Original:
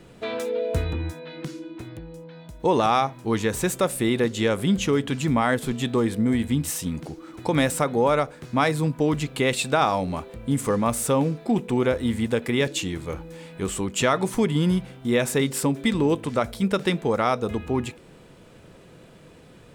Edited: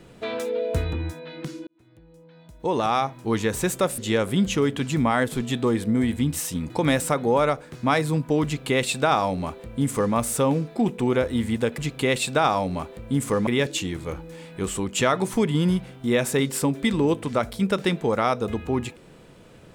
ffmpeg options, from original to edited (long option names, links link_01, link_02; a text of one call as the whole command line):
ffmpeg -i in.wav -filter_complex "[0:a]asplit=6[link_01][link_02][link_03][link_04][link_05][link_06];[link_01]atrim=end=1.67,asetpts=PTS-STARTPTS,afade=type=out:start_time=1.666:duration=0.004:curve=hsin[link_07];[link_02]atrim=start=1.67:end=3.982,asetpts=PTS-STARTPTS,afade=type=in:duration=1.61[link_08];[link_03]atrim=start=4.288:end=7.012[link_09];[link_04]atrim=start=7.398:end=12.482[link_10];[link_05]atrim=start=9.148:end=10.842[link_11];[link_06]atrim=start=12.478[link_12];[link_07][link_08]concat=n=2:v=0:a=1[link_13];[link_13][link_09]acrossfade=duration=0.004:curve1=hsin:curve2=hsin[link_14];[link_14][link_10]acrossfade=duration=0.004:curve1=hsin:curve2=hsin[link_15];[link_15][link_11]acrossfade=duration=0.004:curve1=hsin:curve2=hsin[link_16];[link_16][link_12]acrossfade=duration=0.004:curve1=hsin:curve2=hsin" out.wav